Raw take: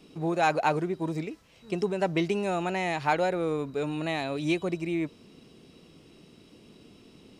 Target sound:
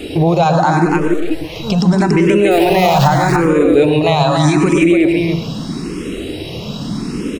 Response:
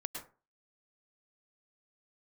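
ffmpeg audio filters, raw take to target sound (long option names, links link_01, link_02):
-filter_complex "[0:a]asettb=1/sr,asplit=3[link_01][link_02][link_03];[link_01]atrim=end=2.514[link_04];[link_02]atrim=start=2.51:end=3.08,asetpts=PTS-STARTPTS,afade=type=in:duration=0.004:curve=qsin,afade=type=out:start_time=0.566:duration=0.004:curve=qsin,aeval=exprs='val(0)+0.5*0.0355*sgn(val(0))':channel_layout=same[link_05];[link_03]atrim=start=3.076[link_06];[link_04][link_05]acrossfade=duration=0.004:curve1=hsin:curve2=qsin[link_07];[link_07][link_06]acrossfade=duration=0.004:curve1=qsin:curve2=hsin,asettb=1/sr,asplit=3[link_08][link_09][link_10];[link_08]atrim=end=4.044[link_11];[link_09]atrim=start=4.04:end=4.55,asetpts=PTS-STARTPTS,afade=type=in:duration=0.004:curve=qsin,afade=type=out:start_time=0.506:duration=0.004:curve=qsin,equalizer=frequency=250:width_type=o:width=1:gain=-8,equalizer=frequency=1000:width_type=o:width=1:gain=6,equalizer=frequency=8000:width_type=o:width=1:gain=4[link_12];[link_10]atrim=start=4.546[link_13];[link_11][link_12]acrossfade=duration=0.004:curve1=hsin:curve2=qsin[link_14];[link_14][link_13]acrossfade=duration=0.004:curve1=qsin:curve2=hsin,acompressor=threshold=-35dB:ratio=6,asplit=3[link_15][link_16][link_17];[link_15]afade=type=out:start_time=0.85:duration=0.02[link_18];[link_16]aeval=exprs='(tanh(501*val(0)+0.75)-tanh(0.75))/501':channel_layout=same,afade=type=in:start_time=0.85:duration=0.02,afade=type=out:start_time=1.3:duration=0.02[link_19];[link_17]afade=type=in:start_time=1.3:duration=0.02[link_20];[link_18][link_19][link_20]amix=inputs=3:normalize=0,aecho=1:1:284:0.531,asplit=2[link_21][link_22];[1:a]atrim=start_sample=2205,lowshelf=frequency=260:gain=7.5[link_23];[link_22][link_23]afir=irnorm=-1:irlink=0,volume=2.5dB[link_24];[link_21][link_24]amix=inputs=2:normalize=0,alimiter=level_in=23.5dB:limit=-1dB:release=50:level=0:latency=1,asplit=2[link_25][link_26];[link_26]afreqshift=0.8[link_27];[link_25][link_27]amix=inputs=2:normalize=1"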